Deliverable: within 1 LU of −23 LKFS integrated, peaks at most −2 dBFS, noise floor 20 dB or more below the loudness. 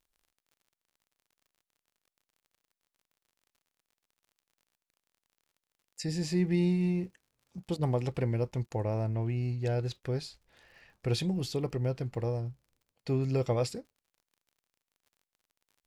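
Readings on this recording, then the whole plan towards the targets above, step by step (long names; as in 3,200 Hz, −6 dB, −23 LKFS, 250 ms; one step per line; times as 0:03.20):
crackle rate 39 per second; integrated loudness −32.0 LKFS; sample peak −17.0 dBFS; target loudness −23.0 LKFS
→ click removal
level +9 dB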